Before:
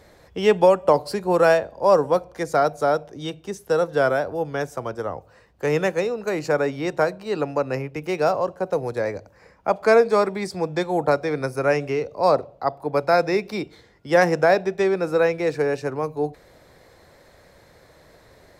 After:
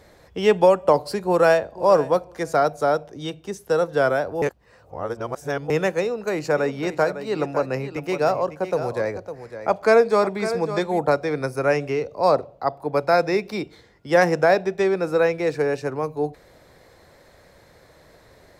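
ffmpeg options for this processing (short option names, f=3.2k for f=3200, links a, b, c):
-filter_complex "[0:a]asplit=2[a][b];[b]afade=t=in:st=1.26:d=0.01,afade=t=out:st=1.79:d=0.01,aecho=0:1:490|980:0.141254|0.0211881[c];[a][c]amix=inputs=2:normalize=0,asplit=3[d][e][f];[d]afade=t=out:st=6.56:d=0.02[g];[e]aecho=1:1:555:0.282,afade=t=in:st=6.56:d=0.02,afade=t=out:st=10.98:d=0.02[h];[f]afade=t=in:st=10.98:d=0.02[i];[g][h][i]amix=inputs=3:normalize=0,asplit=3[j][k][l];[j]atrim=end=4.422[m];[k]atrim=start=4.418:end=5.702,asetpts=PTS-STARTPTS,areverse[n];[l]atrim=start=5.698[o];[m][n]acrossfade=d=0.004:c1=hsin:c2=hsin[p];[p][o]acrossfade=d=0.004:c1=hsin:c2=hsin"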